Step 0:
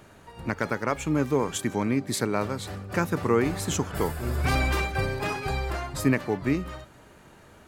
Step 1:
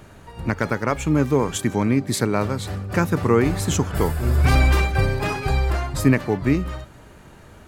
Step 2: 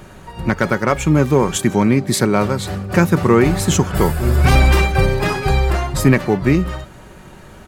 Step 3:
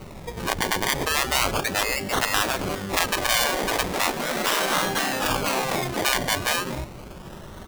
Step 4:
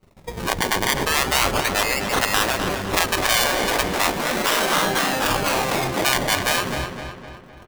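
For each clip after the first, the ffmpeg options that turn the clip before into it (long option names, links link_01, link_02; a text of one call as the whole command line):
ffmpeg -i in.wav -af "lowshelf=frequency=130:gain=8.5,volume=4dB" out.wav
ffmpeg -i in.wav -filter_complex "[0:a]aecho=1:1:5.4:0.33,asplit=2[link_01][link_02];[link_02]volume=10.5dB,asoftclip=hard,volume=-10.5dB,volume=-3dB[link_03];[link_01][link_03]amix=inputs=2:normalize=0,volume=1dB" out.wav
ffmpeg -i in.wav -af "acrusher=samples=26:mix=1:aa=0.000001:lfo=1:lforange=15.6:lforate=0.36,afftfilt=real='re*lt(hypot(re,im),0.398)':imag='im*lt(hypot(re,im),0.398)':win_size=1024:overlap=0.75" out.wav
ffmpeg -i in.wav -filter_complex "[0:a]agate=range=-30dB:threshold=-36dB:ratio=16:detection=peak,asplit=2[link_01][link_02];[link_02]adelay=255,lowpass=frequency=4400:poles=1,volume=-7dB,asplit=2[link_03][link_04];[link_04]adelay=255,lowpass=frequency=4400:poles=1,volume=0.5,asplit=2[link_05][link_06];[link_06]adelay=255,lowpass=frequency=4400:poles=1,volume=0.5,asplit=2[link_07][link_08];[link_08]adelay=255,lowpass=frequency=4400:poles=1,volume=0.5,asplit=2[link_09][link_10];[link_10]adelay=255,lowpass=frequency=4400:poles=1,volume=0.5,asplit=2[link_11][link_12];[link_12]adelay=255,lowpass=frequency=4400:poles=1,volume=0.5[link_13];[link_01][link_03][link_05][link_07][link_09][link_11][link_13]amix=inputs=7:normalize=0,volume=2.5dB" out.wav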